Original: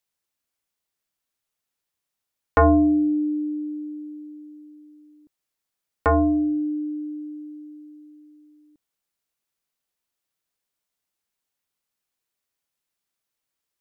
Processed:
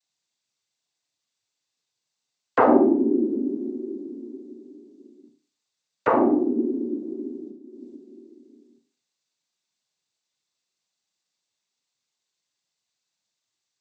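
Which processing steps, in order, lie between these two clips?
7.5–7.95 negative-ratio compressor -43 dBFS, ratio -0.5; noise vocoder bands 16; Schroeder reverb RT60 0.39 s, combs from 30 ms, DRR 5 dB

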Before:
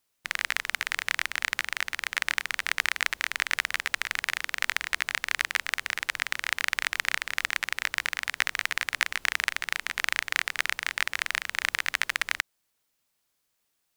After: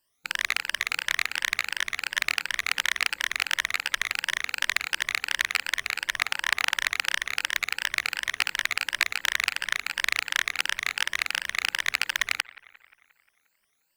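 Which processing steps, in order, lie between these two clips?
moving spectral ripple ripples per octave 1.3, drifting +2.8 Hz, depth 18 dB; 6.1–6.76 dynamic EQ 950 Hz, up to +7 dB, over -43 dBFS, Q 1.5; on a send: analogue delay 0.177 s, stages 4096, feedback 58%, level -22 dB; on the sum: Doppler distortion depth 0.22 ms; gain -1.5 dB

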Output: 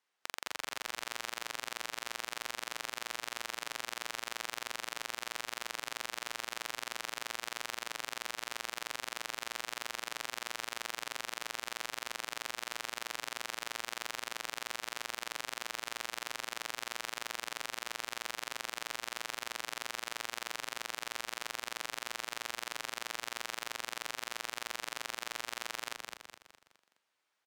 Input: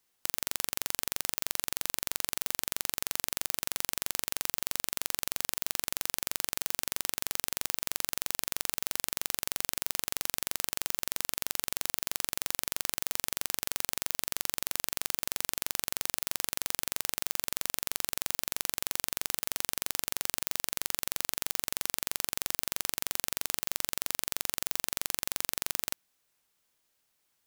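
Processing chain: careless resampling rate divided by 2×, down filtered, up zero stuff; band-pass 1300 Hz, Q 0.59; frequency-shifting echo 0.208 s, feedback 42%, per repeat -67 Hz, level -4 dB

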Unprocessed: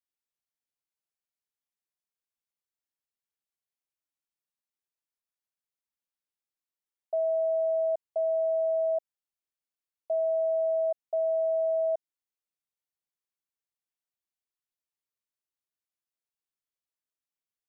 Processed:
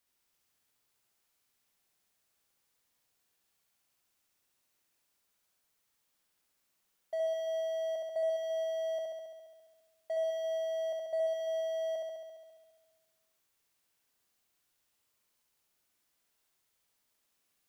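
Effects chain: power-law curve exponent 0.7; flutter echo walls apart 11.7 m, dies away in 1.5 s; gain -7.5 dB

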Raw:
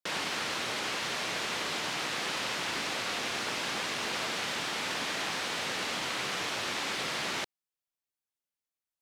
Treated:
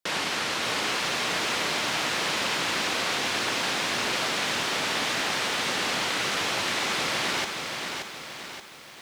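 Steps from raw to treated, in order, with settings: lo-fi delay 0.577 s, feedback 55%, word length 9-bit, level -5 dB; gain +5 dB

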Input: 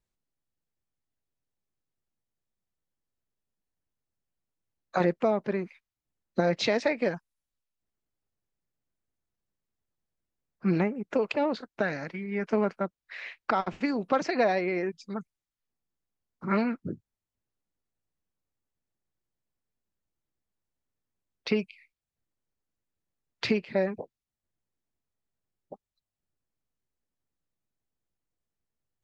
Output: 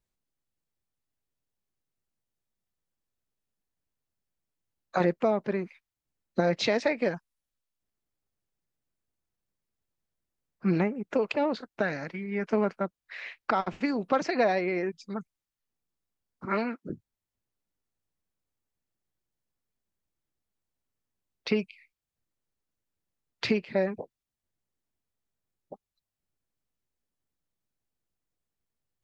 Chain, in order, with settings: 16.45–16.9 HPF 280 Hz 12 dB/oct

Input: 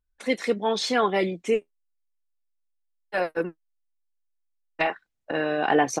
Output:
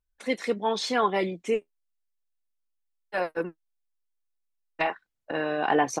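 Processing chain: dynamic EQ 990 Hz, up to +5 dB, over -40 dBFS, Q 3.3; gain -3 dB

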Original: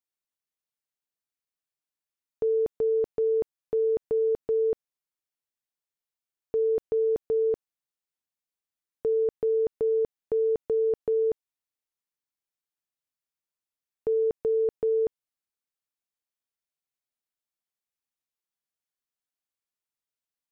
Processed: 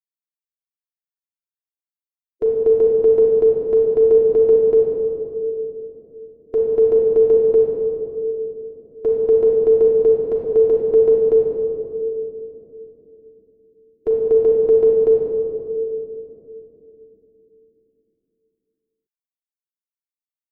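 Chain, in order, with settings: per-bin expansion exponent 3; reverb RT60 3.0 s, pre-delay 3 ms, DRR -5 dB; gain +7.5 dB

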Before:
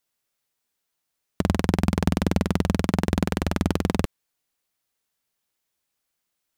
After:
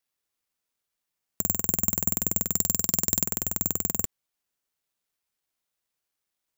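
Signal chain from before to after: careless resampling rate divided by 6×, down none, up zero stuff; 2.52–3.26 bell 5000 Hz +10.5 dB 0.75 oct; gain -12.5 dB

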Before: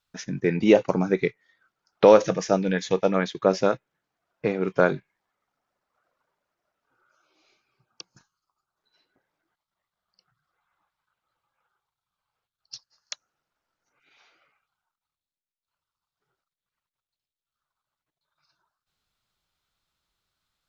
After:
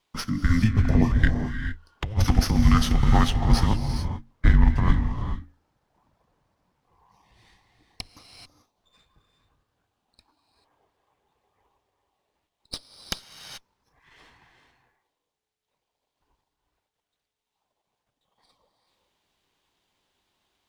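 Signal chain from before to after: low shelf 240 Hz -8 dB; notches 50/100/150/200/250/300/350/400/450 Hz; frequency shift -430 Hz; in parallel at -2 dB: limiter -17.5 dBFS, peak gain reduction 11.5 dB; on the sum: negative-ratio compressor -21 dBFS, ratio -0.5; low shelf 120 Hz +10.5 dB; non-linear reverb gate 0.46 s rising, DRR 6 dB; running maximum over 3 samples; gain -1.5 dB

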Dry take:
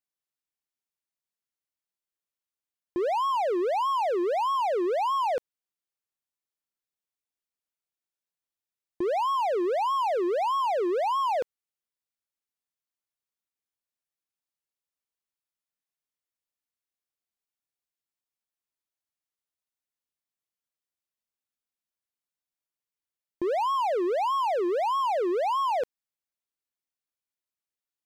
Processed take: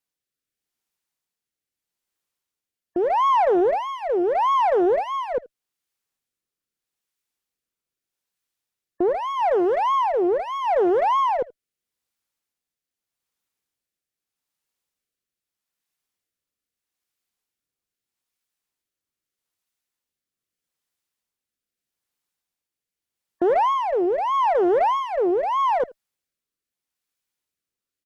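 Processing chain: spectral gate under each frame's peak -30 dB strong; notch 620 Hz, Q 12; in parallel at -6.5 dB: one-sided clip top -31.5 dBFS, bottom -24.5 dBFS; on the sum: rotary speaker horn 0.8 Hz; on a send: echo 79 ms -21.5 dB; on the sum: Doppler distortion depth 0.34 ms; gain +6.5 dB

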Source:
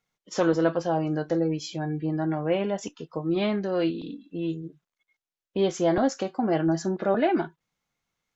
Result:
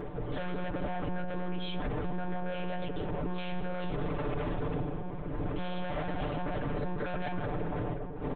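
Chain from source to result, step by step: wind noise 390 Hz -30 dBFS; 4.26–6.57 flutter echo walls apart 11.2 m, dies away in 1.3 s; hard clip -25.5 dBFS, distortion -6 dB; reverb RT60 2.8 s, pre-delay 45 ms, DRR 9.5 dB; harmonic-percussive split percussive +8 dB; monotone LPC vocoder at 8 kHz 180 Hz; comb 6.8 ms, depth 71%; limiter -20 dBFS, peak gain reduction 11.5 dB; gain -5 dB

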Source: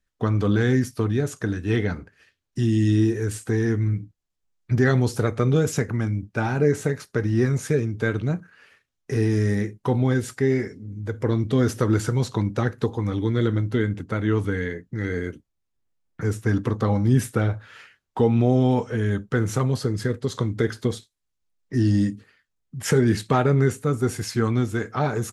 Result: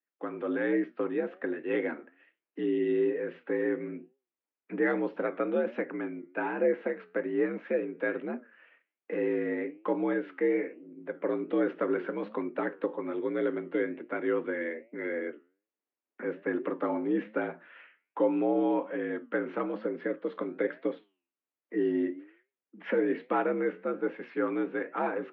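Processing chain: AGC gain up to 6 dB; flange 1.2 Hz, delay 7.1 ms, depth 5.6 ms, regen -85%; mistuned SSB +63 Hz 200–2700 Hz; gain -6 dB

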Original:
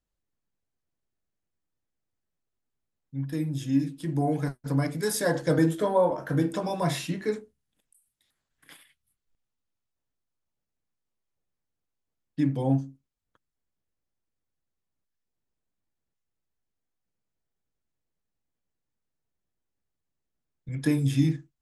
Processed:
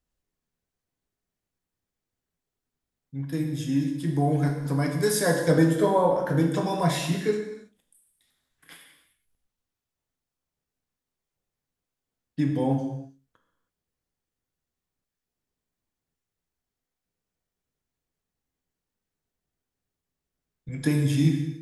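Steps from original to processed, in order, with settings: non-linear reverb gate 0.35 s falling, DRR 3 dB; gain +1.5 dB

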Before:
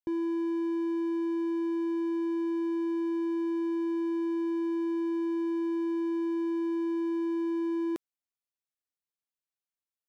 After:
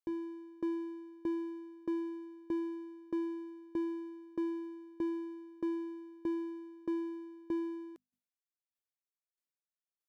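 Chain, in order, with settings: notches 50/100/150/200/250 Hz; dB-ramp tremolo decaying 1.6 Hz, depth 26 dB; gain -1 dB

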